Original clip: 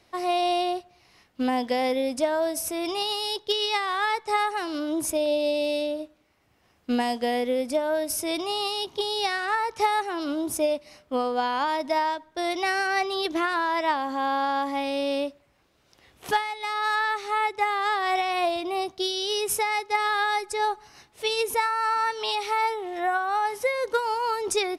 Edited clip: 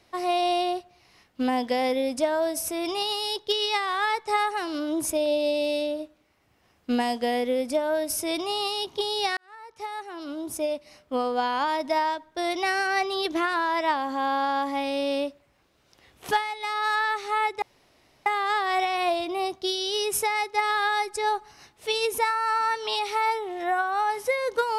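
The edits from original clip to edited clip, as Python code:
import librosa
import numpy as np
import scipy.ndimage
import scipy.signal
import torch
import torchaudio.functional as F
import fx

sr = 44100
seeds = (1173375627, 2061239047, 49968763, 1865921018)

y = fx.edit(x, sr, fx.fade_in_span(start_s=9.37, length_s=1.93),
    fx.insert_room_tone(at_s=17.62, length_s=0.64), tone=tone)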